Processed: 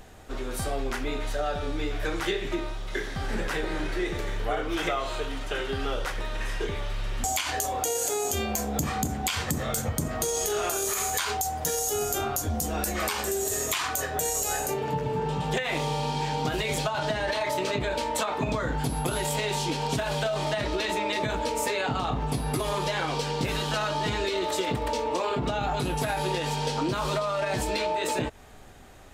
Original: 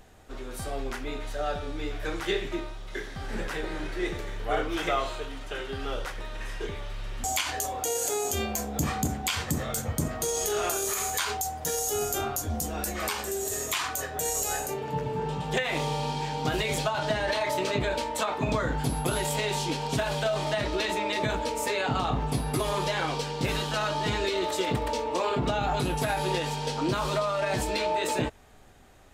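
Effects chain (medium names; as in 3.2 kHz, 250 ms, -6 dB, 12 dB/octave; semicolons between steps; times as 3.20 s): compression, threshold -30 dBFS, peak gain reduction 8.5 dB; trim +5.5 dB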